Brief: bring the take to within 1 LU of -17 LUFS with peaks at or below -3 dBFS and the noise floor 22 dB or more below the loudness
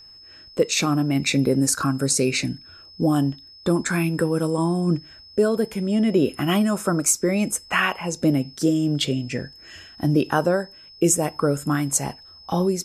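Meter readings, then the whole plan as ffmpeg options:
steady tone 5200 Hz; tone level -44 dBFS; loudness -22.0 LUFS; peak -6.0 dBFS; loudness target -17.0 LUFS
-> -af "bandreject=f=5.2k:w=30"
-af "volume=5dB,alimiter=limit=-3dB:level=0:latency=1"

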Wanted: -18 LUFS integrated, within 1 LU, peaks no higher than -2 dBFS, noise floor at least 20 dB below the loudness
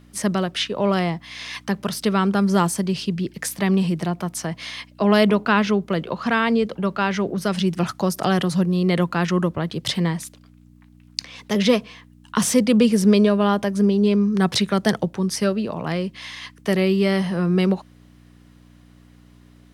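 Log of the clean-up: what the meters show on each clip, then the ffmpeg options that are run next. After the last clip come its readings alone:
hum 60 Hz; harmonics up to 300 Hz; hum level -49 dBFS; loudness -21.0 LUFS; peak -3.0 dBFS; loudness target -18.0 LUFS
-> -af "bandreject=f=60:t=h:w=4,bandreject=f=120:t=h:w=4,bandreject=f=180:t=h:w=4,bandreject=f=240:t=h:w=4,bandreject=f=300:t=h:w=4"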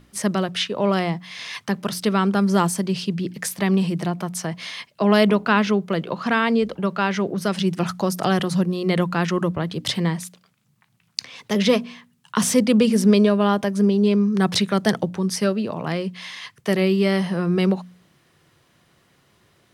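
hum none; loudness -21.5 LUFS; peak -3.5 dBFS; loudness target -18.0 LUFS
-> -af "volume=3.5dB,alimiter=limit=-2dB:level=0:latency=1"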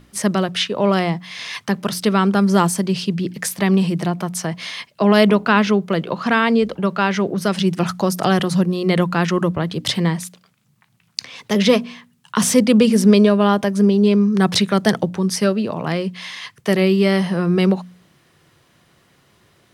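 loudness -18.0 LUFS; peak -2.0 dBFS; noise floor -58 dBFS

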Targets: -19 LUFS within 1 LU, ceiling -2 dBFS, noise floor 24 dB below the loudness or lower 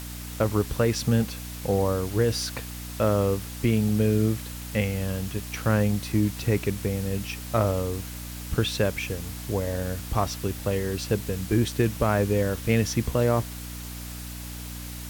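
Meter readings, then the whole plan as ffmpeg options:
hum 60 Hz; harmonics up to 300 Hz; hum level -35 dBFS; noise floor -37 dBFS; noise floor target -51 dBFS; loudness -26.5 LUFS; peak -10.0 dBFS; loudness target -19.0 LUFS
-> -af "bandreject=f=60:t=h:w=4,bandreject=f=120:t=h:w=4,bandreject=f=180:t=h:w=4,bandreject=f=240:t=h:w=4,bandreject=f=300:t=h:w=4"
-af "afftdn=nr=14:nf=-37"
-af "volume=7.5dB"

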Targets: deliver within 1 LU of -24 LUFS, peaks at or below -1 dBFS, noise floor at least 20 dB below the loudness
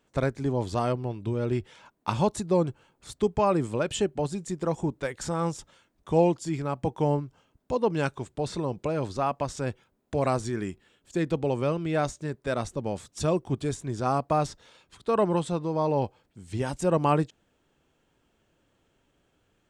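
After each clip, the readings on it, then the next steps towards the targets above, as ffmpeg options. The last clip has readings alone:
loudness -28.5 LUFS; peak -10.0 dBFS; loudness target -24.0 LUFS
-> -af "volume=4.5dB"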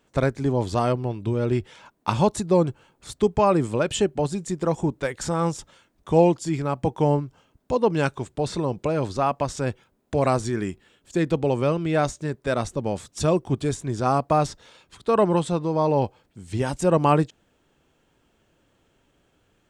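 loudness -24.0 LUFS; peak -5.5 dBFS; noise floor -67 dBFS

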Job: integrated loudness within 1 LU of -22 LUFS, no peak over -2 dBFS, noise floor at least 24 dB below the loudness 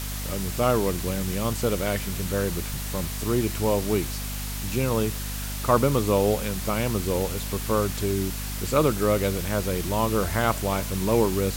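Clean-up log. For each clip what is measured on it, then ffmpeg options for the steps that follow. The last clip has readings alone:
hum 50 Hz; harmonics up to 250 Hz; hum level -30 dBFS; noise floor -32 dBFS; noise floor target -50 dBFS; loudness -25.5 LUFS; peak -7.0 dBFS; loudness target -22.0 LUFS
-> -af "bandreject=f=50:t=h:w=4,bandreject=f=100:t=h:w=4,bandreject=f=150:t=h:w=4,bandreject=f=200:t=h:w=4,bandreject=f=250:t=h:w=4"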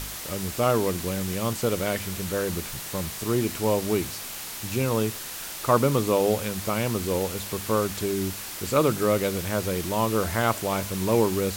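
hum none; noise floor -36 dBFS; noise floor target -50 dBFS
-> -af "afftdn=nr=14:nf=-36"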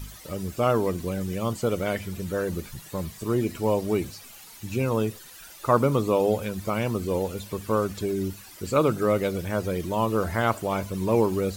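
noise floor -46 dBFS; noise floor target -51 dBFS
-> -af "afftdn=nr=6:nf=-46"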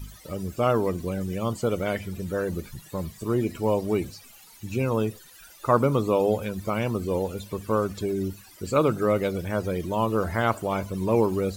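noise floor -50 dBFS; noise floor target -51 dBFS
-> -af "afftdn=nr=6:nf=-50"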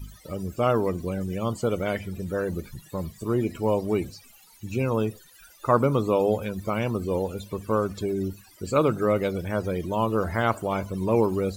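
noise floor -53 dBFS; loudness -26.5 LUFS; peak -7.5 dBFS; loudness target -22.0 LUFS
-> -af "volume=4.5dB"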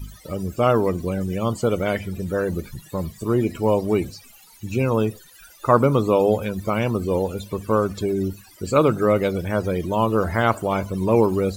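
loudness -22.0 LUFS; peak -3.0 dBFS; noise floor -49 dBFS

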